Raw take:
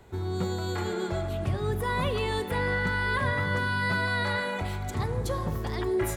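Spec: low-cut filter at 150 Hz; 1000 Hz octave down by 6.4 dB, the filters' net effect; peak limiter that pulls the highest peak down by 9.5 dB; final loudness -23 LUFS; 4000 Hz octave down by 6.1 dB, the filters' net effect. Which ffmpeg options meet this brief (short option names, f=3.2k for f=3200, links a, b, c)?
-af "highpass=150,equalizer=f=1k:t=o:g=-7,equalizer=f=4k:t=o:g=-7,volume=14dB,alimiter=limit=-15dB:level=0:latency=1"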